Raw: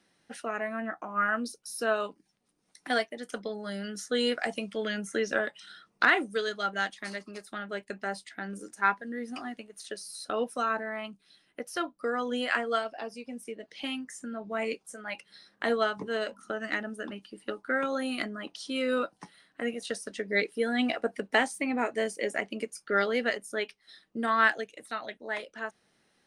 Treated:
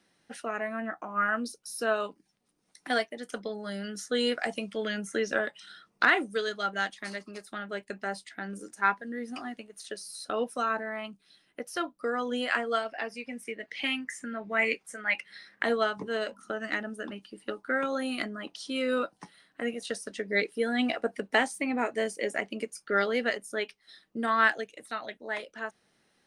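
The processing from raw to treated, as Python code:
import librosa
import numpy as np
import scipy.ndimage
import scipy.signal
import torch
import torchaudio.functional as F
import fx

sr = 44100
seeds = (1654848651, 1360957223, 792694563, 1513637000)

y = fx.peak_eq(x, sr, hz=2000.0, db=13.5, octaves=0.81, at=(12.89, 15.63))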